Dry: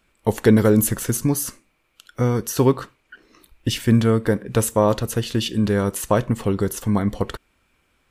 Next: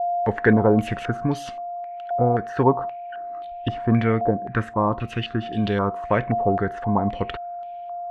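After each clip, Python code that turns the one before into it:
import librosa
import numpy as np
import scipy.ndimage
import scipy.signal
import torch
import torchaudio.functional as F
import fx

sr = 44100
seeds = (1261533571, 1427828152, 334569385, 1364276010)

y = x + 10.0 ** (-29.0 / 20.0) * np.sin(2.0 * np.pi * 700.0 * np.arange(len(x)) / sr)
y = fx.spec_box(y, sr, start_s=4.3, length_s=1.13, low_hz=400.0, high_hz=1000.0, gain_db=-8)
y = fx.filter_held_lowpass(y, sr, hz=3.8, low_hz=730.0, high_hz=3200.0)
y = F.gain(torch.from_numpy(y), -3.5).numpy()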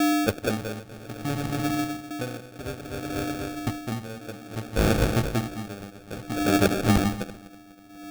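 y = fx.reverse_delay_fb(x, sr, ms=123, feedback_pct=71, wet_db=-8.0)
y = fx.sample_hold(y, sr, seeds[0], rate_hz=1000.0, jitter_pct=0)
y = y * 10.0 ** (-22 * (0.5 - 0.5 * np.cos(2.0 * np.pi * 0.59 * np.arange(len(y)) / sr)) / 20.0)
y = F.gain(torch.from_numpy(y), 3.0).numpy()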